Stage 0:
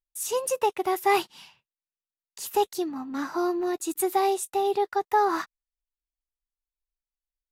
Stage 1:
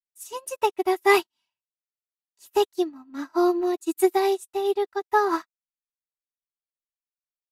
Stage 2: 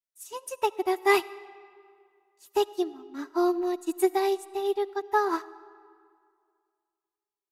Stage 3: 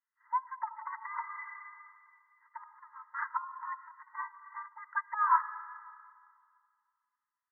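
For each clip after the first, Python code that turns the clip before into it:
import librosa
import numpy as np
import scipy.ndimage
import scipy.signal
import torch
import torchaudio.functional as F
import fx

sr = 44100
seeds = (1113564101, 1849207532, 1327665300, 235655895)

y1 = x + 0.55 * np.pad(x, (int(3.1 * sr / 1000.0), 0))[:len(x)]
y1 = fx.upward_expand(y1, sr, threshold_db=-44.0, expansion=2.5)
y1 = y1 * librosa.db_to_amplitude(6.0)
y2 = fx.rev_freeverb(y1, sr, rt60_s=2.2, hf_ratio=0.7, predelay_ms=30, drr_db=18.5)
y2 = y2 * librosa.db_to_amplitude(-3.5)
y3 = fx.env_lowpass_down(y2, sr, base_hz=1200.0, full_db=-24.5)
y3 = fx.over_compress(y3, sr, threshold_db=-27.0, ratio=-0.5)
y3 = fx.brickwall_bandpass(y3, sr, low_hz=870.0, high_hz=2100.0)
y3 = y3 * librosa.db_to_amplitude(7.0)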